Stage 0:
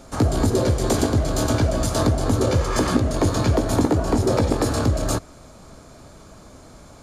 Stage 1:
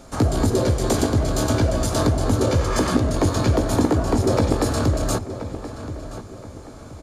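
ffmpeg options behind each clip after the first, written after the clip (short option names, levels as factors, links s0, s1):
-filter_complex "[0:a]asplit=2[s0][s1];[s1]adelay=1026,lowpass=f=3200:p=1,volume=0.251,asplit=2[s2][s3];[s3]adelay=1026,lowpass=f=3200:p=1,volume=0.38,asplit=2[s4][s5];[s5]adelay=1026,lowpass=f=3200:p=1,volume=0.38,asplit=2[s6][s7];[s7]adelay=1026,lowpass=f=3200:p=1,volume=0.38[s8];[s0][s2][s4][s6][s8]amix=inputs=5:normalize=0"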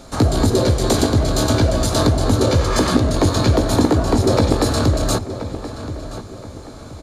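-af "equalizer=f=4000:w=4:g=7,volume=1.5"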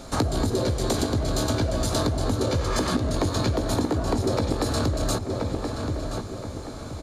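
-af "acompressor=threshold=0.0891:ratio=6"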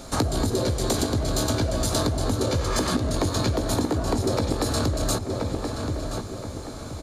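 -af "highshelf=f=6300:g=5.5"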